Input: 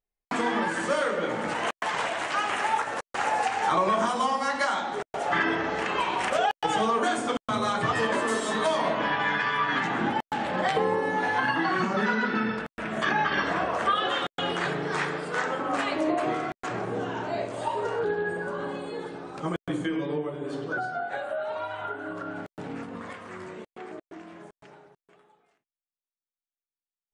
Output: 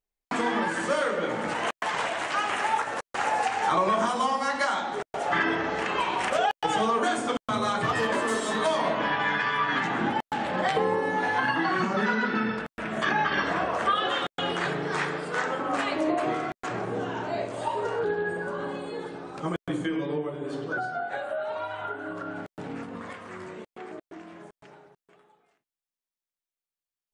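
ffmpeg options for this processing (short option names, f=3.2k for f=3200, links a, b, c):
-filter_complex "[0:a]asettb=1/sr,asplit=3[a][b][c];[a]atrim=end=7.794[d];[b]atrim=start=7.79:end=8.59,asetpts=PTS-STARTPTS,afade=t=in:d=0.004:c=qsin,afade=t=out:st=0.796:d=0.004:c=qsin,asoftclip=type=hard:threshold=-19dB[e];[c]atrim=start=8.586[f];[d][e]acrossfade=d=0.004:c1=hsin:c2=qsin[g];[g][f]acrossfade=d=0.004:c1=qsin:c2=hsin"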